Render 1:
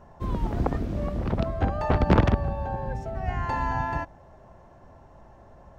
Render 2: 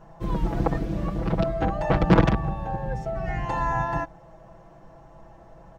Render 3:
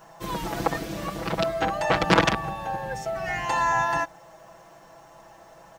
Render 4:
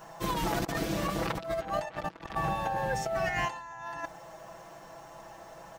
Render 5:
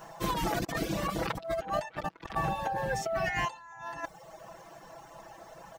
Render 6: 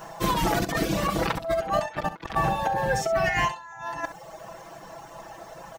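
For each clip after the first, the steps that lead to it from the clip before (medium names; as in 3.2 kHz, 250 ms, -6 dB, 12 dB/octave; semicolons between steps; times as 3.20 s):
comb 6.1 ms, depth 92%
tilt EQ +4 dB/octave; trim +3.5 dB
compressor with a negative ratio -30 dBFS, ratio -0.5; trim -2.5 dB
reverb removal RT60 0.82 s; trim +1 dB
early reflections 41 ms -17 dB, 67 ms -13 dB; trim +6.5 dB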